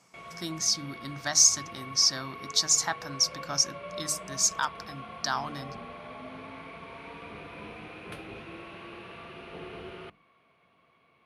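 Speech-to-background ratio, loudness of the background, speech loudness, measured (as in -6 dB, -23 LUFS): 17.5 dB, -43.0 LUFS, -25.5 LUFS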